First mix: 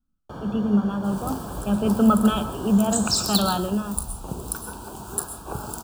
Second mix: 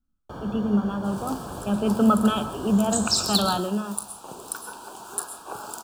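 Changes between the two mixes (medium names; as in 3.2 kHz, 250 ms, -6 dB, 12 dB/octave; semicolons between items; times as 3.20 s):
second sound: add frequency weighting A; master: add peaking EQ 170 Hz -3 dB 0.89 oct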